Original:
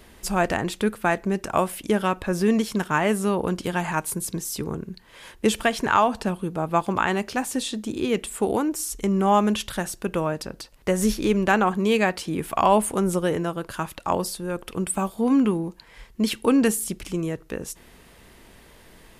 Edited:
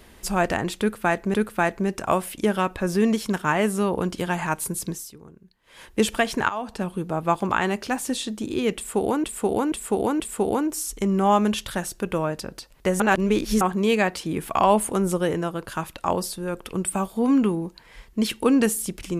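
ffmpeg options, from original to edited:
ffmpeg -i in.wav -filter_complex "[0:a]asplit=10[link_01][link_02][link_03][link_04][link_05][link_06][link_07][link_08][link_09][link_10];[link_01]atrim=end=1.342[link_11];[link_02]atrim=start=0.798:end=4.58,asetpts=PTS-STARTPTS,afade=type=out:start_time=3.562:duration=0.22:silence=0.149624[link_12];[link_03]atrim=start=4.58:end=5.09,asetpts=PTS-STARTPTS,volume=-16.5dB[link_13];[link_04]atrim=start=5.09:end=5.95,asetpts=PTS-STARTPTS,afade=type=in:duration=0.22:silence=0.149624,afade=type=out:start_time=0.856:duration=0.004:curve=hsin:silence=0.149624[link_14];[link_05]atrim=start=5.95:end=8.702,asetpts=PTS-STARTPTS,afade=type=in:duration=0.46:silence=0.149624[link_15];[link_06]atrim=start=8.218:end=8.702[link_16];[link_07]atrim=start=8.218:end=8.702[link_17];[link_08]atrim=start=8.218:end=11.022[link_18];[link_09]atrim=start=11.018:end=11.632,asetpts=PTS-STARTPTS,areverse[link_19];[link_10]atrim=start=11.628[link_20];[link_12][link_13][link_14][link_15]concat=n=4:v=0:a=1[link_21];[link_11][link_21]acrossfade=duration=0.004:curve1=hsin:curve2=hsin[link_22];[link_22][link_16]acrossfade=duration=0.004:curve1=hsin:curve2=hsin[link_23];[link_23][link_17]acrossfade=duration=0.004:curve1=hsin:curve2=hsin[link_24];[link_24][link_18]acrossfade=duration=0.004:curve1=hsin:curve2=hsin[link_25];[link_25][link_19]acrossfade=duration=0.004:curve1=hsin:curve2=hsin[link_26];[link_26][link_20]acrossfade=duration=0.004:curve1=hsin:curve2=hsin" out.wav

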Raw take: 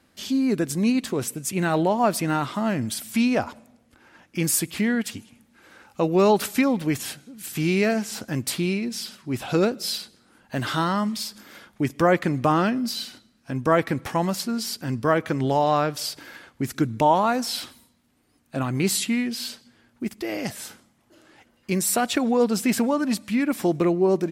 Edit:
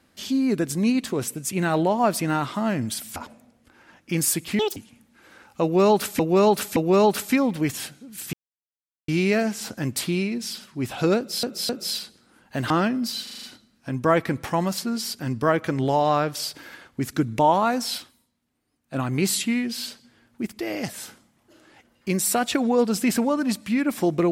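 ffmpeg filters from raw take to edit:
ffmpeg -i in.wav -filter_complex "[0:a]asplit=17[link_01][link_02][link_03][link_04][link_05][link_06][link_07][link_08][link_09][link_10][link_11][link_12][link_13][link_14][link_15][link_16][link_17];[link_01]atrim=end=3.162[link_18];[link_02]atrim=start=3.418:end=4.854[link_19];[link_03]atrim=start=4.85:end=5.16,asetpts=PTS-STARTPTS,asetrate=79380,aresample=44100[link_20];[link_04]atrim=start=5.156:end=6.592[link_21];[link_05]atrim=start=6.018:end=6.592[link_22];[link_06]atrim=start=6.018:end=7.59,asetpts=PTS-STARTPTS,afade=type=out:start_time=1.568:duration=0.004:curve=hsin,apad=pad_dur=0.75[link_23];[link_07]atrim=start=7.59:end=9.942,asetpts=PTS-STARTPTS,afade=type=in:duration=0.004:curve=hsin[link_24];[link_08]atrim=start=9.678:end=9.942[link_25];[link_09]atrim=start=9.678:end=10.692[link_26];[link_10]atrim=start=12.518:end=13.092[link_27];[link_11]atrim=start=13.048:end=13.092[link_28];[link_12]atrim=start=13.048:end=13.092[link_29];[link_13]atrim=start=13.048:end=13.092[link_30];[link_14]atrim=start=13.048:end=13.092[link_31];[link_15]atrim=start=13.048:end=18.04,asetpts=PTS-STARTPTS,afade=type=out:start_time=4.532:duration=0.46:curve=exp:silence=0.316228[link_32];[link_16]atrim=start=18.04:end=18.12,asetpts=PTS-STARTPTS,volume=-10dB[link_33];[link_17]atrim=start=18.12,asetpts=PTS-STARTPTS,afade=type=in:duration=0.46:curve=exp:silence=0.316228[link_34];[link_18][link_19]acrossfade=duration=0.004:curve1=hsin:curve2=hsin[link_35];[link_35][link_20]acrossfade=duration=0.004:curve1=hsin:curve2=hsin[link_36];[link_36][link_21]acrossfade=duration=0.004:curve1=hsin:curve2=hsin[link_37];[link_37][link_22]acrossfade=duration=0.004:curve1=hsin:curve2=hsin[link_38];[link_23][link_24]concat=n=2:v=0:a=1[link_39];[link_38][link_39]acrossfade=duration=0.004:curve1=hsin:curve2=hsin[link_40];[link_40][link_25]acrossfade=duration=0.004:curve1=hsin:curve2=hsin[link_41];[link_41][link_26]acrossfade=duration=0.004:curve1=hsin:curve2=hsin[link_42];[link_42][link_27]acrossfade=duration=0.004:curve1=hsin:curve2=hsin[link_43];[link_43][link_28]acrossfade=duration=0.004:curve1=hsin:curve2=hsin[link_44];[link_44][link_29]acrossfade=duration=0.004:curve1=hsin:curve2=hsin[link_45];[link_45][link_30]acrossfade=duration=0.004:curve1=hsin:curve2=hsin[link_46];[link_46][link_31]acrossfade=duration=0.004:curve1=hsin:curve2=hsin[link_47];[link_32][link_33][link_34]concat=n=3:v=0:a=1[link_48];[link_47][link_48]acrossfade=duration=0.004:curve1=hsin:curve2=hsin" out.wav

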